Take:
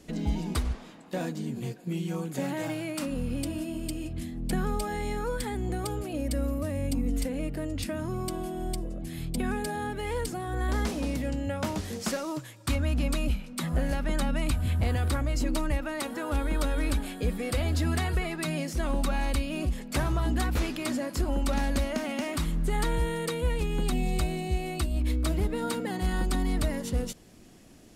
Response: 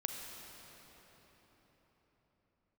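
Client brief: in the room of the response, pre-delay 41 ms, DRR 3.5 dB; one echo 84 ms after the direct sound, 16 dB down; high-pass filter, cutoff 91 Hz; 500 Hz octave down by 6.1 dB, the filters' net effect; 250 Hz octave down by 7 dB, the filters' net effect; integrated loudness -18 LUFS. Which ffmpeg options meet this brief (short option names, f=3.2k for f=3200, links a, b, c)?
-filter_complex "[0:a]highpass=91,equalizer=f=250:t=o:g=-7.5,equalizer=f=500:t=o:g=-5.5,aecho=1:1:84:0.158,asplit=2[a][b];[1:a]atrim=start_sample=2205,adelay=41[c];[b][c]afir=irnorm=-1:irlink=0,volume=-4.5dB[d];[a][d]amix=inputs=2:normalize=0,volume=16dB"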